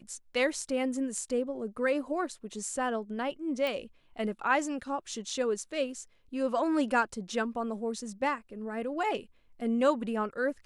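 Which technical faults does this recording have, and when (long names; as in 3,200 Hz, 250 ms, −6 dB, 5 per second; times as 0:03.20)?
0:03.67: click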